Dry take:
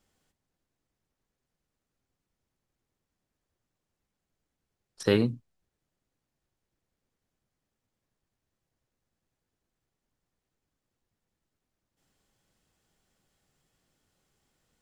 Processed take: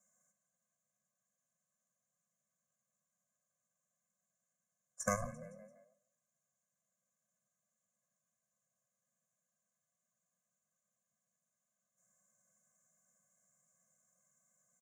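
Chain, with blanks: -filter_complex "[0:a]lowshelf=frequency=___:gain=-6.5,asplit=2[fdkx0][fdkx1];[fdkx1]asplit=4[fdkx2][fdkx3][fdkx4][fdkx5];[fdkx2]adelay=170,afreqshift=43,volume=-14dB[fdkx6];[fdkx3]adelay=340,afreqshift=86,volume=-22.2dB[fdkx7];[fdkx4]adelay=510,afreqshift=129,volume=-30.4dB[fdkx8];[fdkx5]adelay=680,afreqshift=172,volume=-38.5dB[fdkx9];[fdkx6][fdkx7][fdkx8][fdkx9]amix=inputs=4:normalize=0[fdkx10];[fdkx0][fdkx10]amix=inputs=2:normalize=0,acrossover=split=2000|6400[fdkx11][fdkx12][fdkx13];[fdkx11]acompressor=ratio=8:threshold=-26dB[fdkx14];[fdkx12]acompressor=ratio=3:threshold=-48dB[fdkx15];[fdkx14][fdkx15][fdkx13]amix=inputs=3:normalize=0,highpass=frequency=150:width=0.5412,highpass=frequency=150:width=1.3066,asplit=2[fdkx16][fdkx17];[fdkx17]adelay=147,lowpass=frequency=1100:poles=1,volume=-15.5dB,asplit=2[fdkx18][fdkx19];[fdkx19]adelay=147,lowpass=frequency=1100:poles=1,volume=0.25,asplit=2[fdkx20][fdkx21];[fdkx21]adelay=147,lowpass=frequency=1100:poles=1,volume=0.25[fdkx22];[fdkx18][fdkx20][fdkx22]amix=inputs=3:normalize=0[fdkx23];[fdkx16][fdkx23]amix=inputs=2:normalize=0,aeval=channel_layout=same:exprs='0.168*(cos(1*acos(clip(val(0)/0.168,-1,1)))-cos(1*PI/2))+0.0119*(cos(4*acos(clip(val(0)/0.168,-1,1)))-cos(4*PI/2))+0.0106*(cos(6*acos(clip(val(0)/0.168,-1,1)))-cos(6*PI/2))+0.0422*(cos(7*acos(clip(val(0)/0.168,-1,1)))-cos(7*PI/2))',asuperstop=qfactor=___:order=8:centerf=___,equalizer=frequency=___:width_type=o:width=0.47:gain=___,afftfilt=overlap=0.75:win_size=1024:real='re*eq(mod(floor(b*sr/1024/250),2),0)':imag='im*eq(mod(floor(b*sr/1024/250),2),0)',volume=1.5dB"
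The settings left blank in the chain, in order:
410, 0.87, 3500, 6900, 14.5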